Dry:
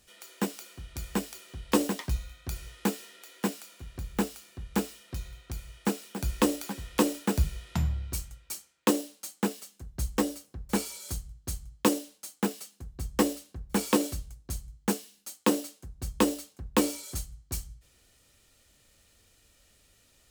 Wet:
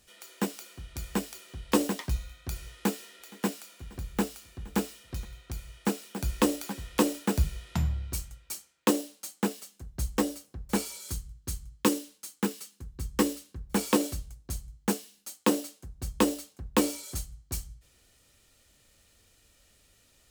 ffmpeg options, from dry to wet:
-filter_complex "[0:a]asettb=1/sr,asplit=3[a][b][c];[a]atrim=end=2.734[d];[b]atrim=start=2.73:end=5.25,asetpts=PTS-STARTPTS,afade=t=in:d=0.004:c=qsin,afade=t=out:st=2.516:d=0.004:c=qsin,aecho=1:1:469:0.0708,atrim=end_sample=111132[e];[c]atrim=start=5.246[f];[d][e]acrossfade=d=0.004:c1=hsin:c2=qsin[g];[g][f]acrossfade=d=0.004:c1=qsin:c2=hsin,asettb=1/sr,asplit=3[h][i][j];[h]atrim=end=11.014[k];[i]atrim=start=11.01:end=13.67,asetpts=PTS-STARTPTS,afade=t=in:d=0.004:c=qsin,afade=t=out:st=2.656:d=0.004:c=qsin,equalizer=f=670:w=4.6:g=-13[l];[j]atrim=start=13.666[m];[k][l]acrossfade=d=0.004:c1=hsin:c2=qsin[n];[n][m]acrossfade=d=0.004:c1=qsin:c2=hsin"

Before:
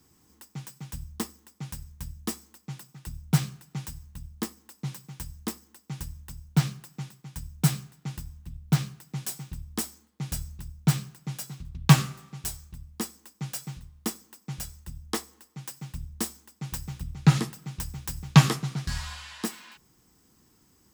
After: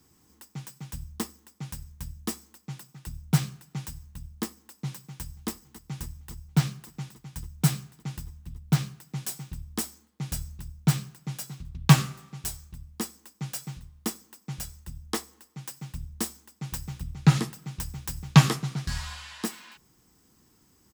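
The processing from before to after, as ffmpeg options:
-filter_complex "[0:a]asplit=2[a][b];[b]afade=t=in:st=5.01:d=0.01,afade=t=out:st=5.5:d=0.01,aecho=0:1:280|560|840|1120|1400|1680|1960|2240|2520|2800|3080|3360:0.141254|0.120066|0.102056|0.0867475|0.0737353|0.062675|0.0532738|0.0452827|0.0384903|0.0327168|0.0278092|0.0236379[c];[a][c]amix=inputs=2:normalize=0"

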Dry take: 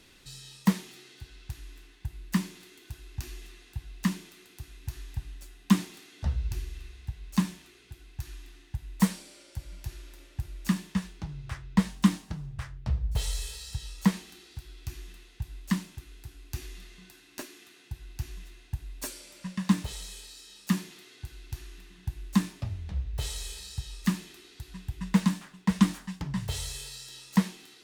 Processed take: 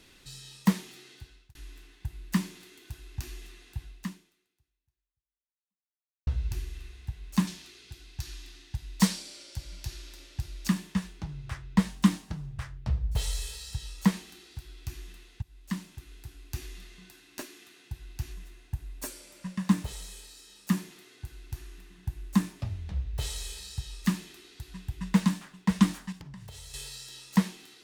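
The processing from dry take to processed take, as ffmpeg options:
-filter_complex "[0:a]asettb=1/sr,asplit=3[a][b][c];[a]atrim=end=7.474[d];[b]atrim=start=7.47:end=10.68,asetpts=PTS-STARTPTS,afade=t=in:d=0.004:c=qsin,afade=t=out:st=3.206:d=0.004:c=qsin,equalizer=f=4.8k:t=o:w=1.4:g=9.5[e];[c]atrim=start=10.676[f];[d][e]acrossfade=d=0.004:c1=hsin:c2=qsin[g];[g][f]acrossfade=d=0.004:c1=qsin:c2=hsin,asettb=1/sr,asplit=3[h][i][j];[h]atrim=end=18.334[k];[i]atrim=start=18.33:end=22.6,asetpts=PTS-STARTPTS,afade=t=in:d=0.004:c=qsin,afade=t=out:st=4.266:d=0.004:c=qsin,equalizer=f=3.8k:w=0.74:g=-4[l];[j]atrim=start=22.596[m];[k][l]acrossfade=d=0.004:c1=hsin:c2=qsin[n];[n][m]acrossfade=d=0.004:c1=qsin:c2=hsin,asettb=1/sr,asplit=3[o][p][q];[o]atrim=end=26.124[r];[p]atrim=start=26.12:end=26.74,asetpts=PTS-STARTPTS,afade=t=in:d=0.004:c=qsin,afade=t=out:st=0.616:d=0.004:c=qsin,acompressor=threshold=-42dB:ratio=8:attack=3.2:release=140:knee=1:detection=peak[s];[q]atrim=start=26.736[t];[r][s]acrossfade=d=0.004:c1=hsin:c2=qsin[u];[u][t]acrossfade=d=0.004:c1=qsin:c2=hsin,asplit=4[v][w][x][y];[v]atrim=end=1.55,asetpts=PTS-STARTPTS,afade=t=out:st=1.14:d=0.41[z];[w]atrim=start=1.55:end=6.27,asetpts=PTS-STARTPTS,afade=t=in:d=0.004:c=hsin,afade=t=out:st=2.29:d=2.43:c=exp[aa];[x]atrim=start=6.27:end=15.42,asetpts=PTS-STARTPTS,afade=t=in:d=0.004:c=hsin,afade=t=out:st=9.146:d=0.004:c=hsin:silence=0.149624[ab];[y]atrim=start=15.42,asetpts=PTS-STARTPTS,afade=t=in:d=0.71:silence=0.149624[ac];[z][aa][ab][ac]concat=n=4:v=0:a=1"

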